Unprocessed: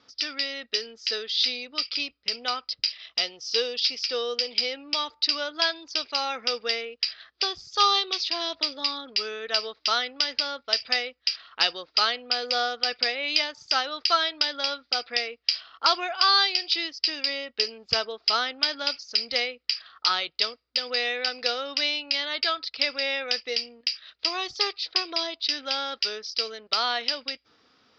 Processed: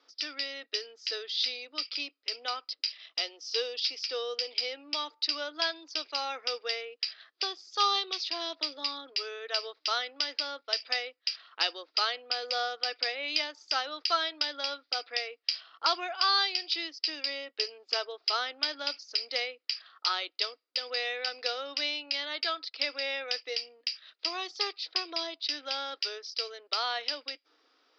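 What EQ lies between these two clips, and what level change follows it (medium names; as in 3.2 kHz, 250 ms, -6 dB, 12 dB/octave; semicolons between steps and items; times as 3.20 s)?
elliptic high-pass 290 Hz, stop band 40 dB; -5.0 dB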